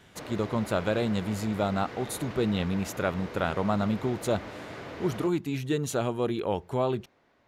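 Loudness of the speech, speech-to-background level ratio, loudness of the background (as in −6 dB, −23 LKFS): −29.5 LKFS, 12.0 dB, −41.5 LKFS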